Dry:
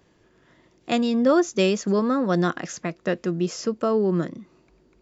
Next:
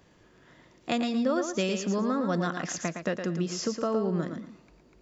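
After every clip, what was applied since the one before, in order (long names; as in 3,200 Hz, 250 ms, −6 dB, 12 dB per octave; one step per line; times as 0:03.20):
parametric band 370 Hz −4.5 dB 0.44 octaves
downward compressor 2.5 to 1, threshold −30 dBFS, peak gain reduction 10 dB
on a send: feedback echo with a high-pass in the loop 113 ms, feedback 23%, high-pass 170 Hz, level −6.5 dB
on the sum: level +1.5 dB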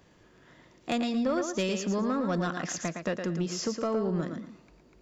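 soft clipping −19.5 dBFS, distortion −21 dB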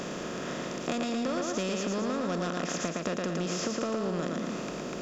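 compressor on every frequency bin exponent 0.4
downward compressor, threshold −27 dBFS, peak gain reduction 7 dB
level −1 dB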